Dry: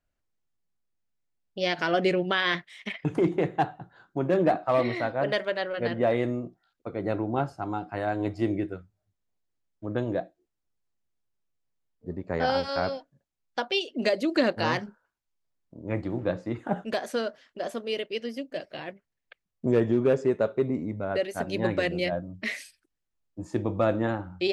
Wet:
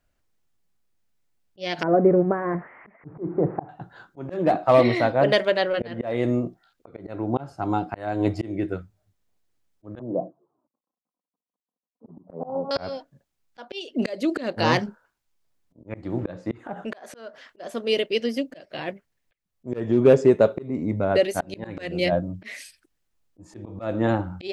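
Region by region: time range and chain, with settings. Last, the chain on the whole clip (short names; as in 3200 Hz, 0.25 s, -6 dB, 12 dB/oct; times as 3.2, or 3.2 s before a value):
1.83–3.69 switching spikes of -17.5 dBFS + Gaussian blur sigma 7.9 samples
9.99–12.71 G.711 law mismatch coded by mu + Chebyshev band-pass 130–1100 Hz, order 4 + envelope flanger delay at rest 4 ms, full sweep at -25.5 dBFS
16.57–17.59 bell 990 Hz +7 dB 2.7 oct + compressor 2.5:1, threshold -39 dBFS
whole clip: auto swell 0.359 s; dynamic EQ 1500 Hz, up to -4 dB, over -43 dBFS, Q 1.2; gain +8.5 dB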